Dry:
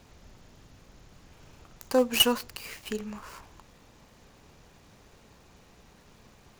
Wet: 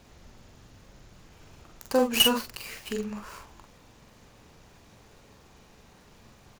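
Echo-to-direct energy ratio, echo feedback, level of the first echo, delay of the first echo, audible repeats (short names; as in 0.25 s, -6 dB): -4.0 dB, no steady repeat, -5.0 dB, 44 ms, 1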